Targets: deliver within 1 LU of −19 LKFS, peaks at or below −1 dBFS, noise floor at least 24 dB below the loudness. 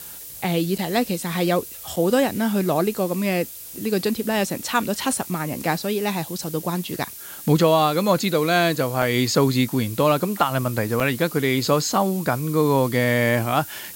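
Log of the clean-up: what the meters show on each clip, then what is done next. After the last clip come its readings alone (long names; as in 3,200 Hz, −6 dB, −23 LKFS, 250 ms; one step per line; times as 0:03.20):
number of dropouts 4; longest dropout 4.6 ms; background noise floor −38 dBFS; target noise floor −46 dBFS; integrated loudness −22.0 LKFS; sample peak −5.0 dBFS; target loudness −19.0 LKFS
→ repair the gap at 0:00.78/0:01.96/0:09.02/0:11.00, 4.6 ms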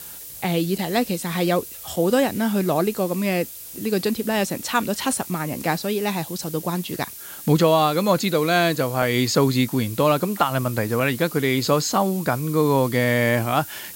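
number of dropouts 0; background noise floor −38 dBFS; target noise floor −46 dBFS
→ noise reduction from a noise print 8 dB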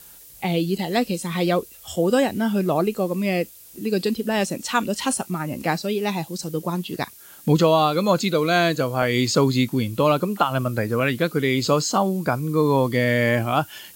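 background noise floor −46 dBFS; integrated loudness −22.0 LKFS; sample peak −5.0 dBFS; target loudness −19.0 LKFS
→ level +3 dB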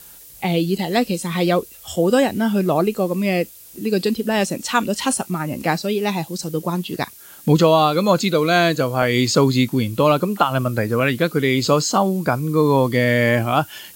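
integrated loudness −19.0 LKFS; sample peak −2.0 dBFS; background noise floor −43 dBFS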